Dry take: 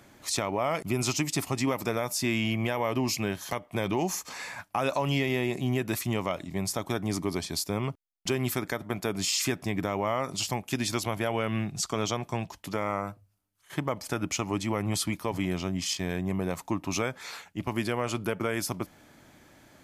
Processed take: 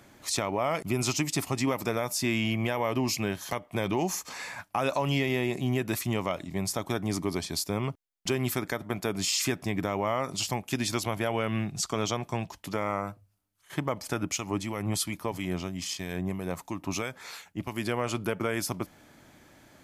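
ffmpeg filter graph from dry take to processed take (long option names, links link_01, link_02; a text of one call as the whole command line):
ffmpeg -i in.wav -filter_complex "[0:a]asettb=1/sr,asplit=3[link_01][link_02][link_03];[link_01]atrim=end=14.234[link_04];[link_02]atrim=start=14.23:end=17.86,asetpts=PTS-STARTPTS,afade=type=in:duration=0.004:curve=qsin,afade=type=out:start_time=3.626:duration=0.004:curve=qsin,acrossover=split=1900[link_05][link_06];[link_05]aeval=exprs='val(0)*(1-0.5/2+0.5/2*cos(2*PI*3*n/s))':channel_layout=same[link_07];[link_06]aeval=exprs='val(0)*(1-0.5/2-0.5/2*cos(2*PI*3*n/s))':channel_layout=same[link_08];[link_07][link_08]amix=inputs=2:normalize=0,highshelf=frequency=7700:gain=4.5[link_09];[link_03]atrim=start=17.856[link_10];[link_04][link_09]acrossfade=duration=0.004:curve1=hsin:curve2=qsin[link_11];[link_11][link_10]acrossfade=duration=0.004:curve1=qsin:curve2=hsin" out.wav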